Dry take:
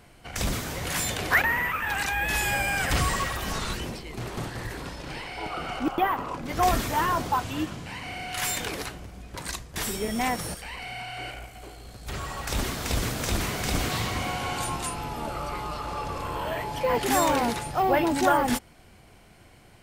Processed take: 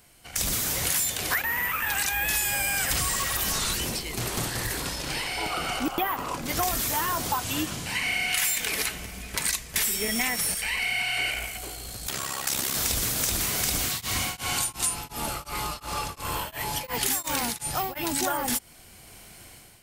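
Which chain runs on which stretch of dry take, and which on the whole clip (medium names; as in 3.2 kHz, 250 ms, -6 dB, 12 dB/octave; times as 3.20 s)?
7.95–11.57 s: peaking EQ 2.2 kHz +8 dB 0.87 oct + comb 4.6 ms, depth 30%
12.07–12.75 s: high-pass 140 Hz + AM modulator 67 Hz, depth 60%
13.84–18.20 s: dynamic bell 510 Hz, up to -7 dB, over -37 dBFS, Q 0.86 + tremolo of two beating tones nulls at 2.8 Hz
whole clip: level rider gain up to 10.5 dB; pre-emphasis filter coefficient 0.8; compression 6:1, threshold -29 dBFS; trim +5.5 dB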